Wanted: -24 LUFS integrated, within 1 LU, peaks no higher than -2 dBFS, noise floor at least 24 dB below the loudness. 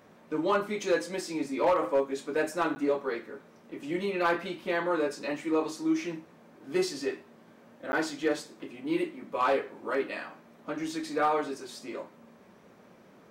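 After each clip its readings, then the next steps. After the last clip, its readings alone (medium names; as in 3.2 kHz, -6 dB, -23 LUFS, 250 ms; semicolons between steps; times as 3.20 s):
clipped samples 0.2%; clipping level -18.5 dBFS; dropouts 2; longest dropout 10 ms; loudness -30.5 LUFS; peak level -18.5 dBFS; loudness target -24.0 LUFS
-> clip repair -18.5 dBFS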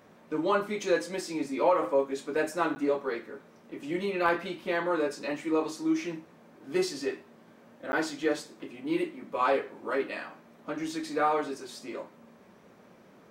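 clipped samples 0.0%; dropouts 2; longest dropout 10 ms
-> interpolate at 2.75/7.92 s, 10 ms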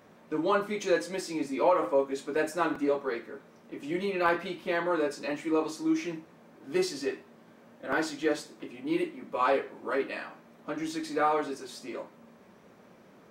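dropouts 0; loudness -30.5 LUFS; peak level -11.0 dBFS; loudness target -24.0 LUFS
-> trim +6.5 dB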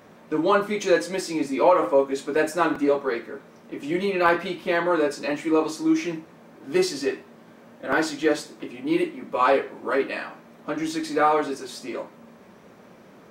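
loudness -24.0 LUFS; peak level -4.5 dBFS; noise floor -50 dBFS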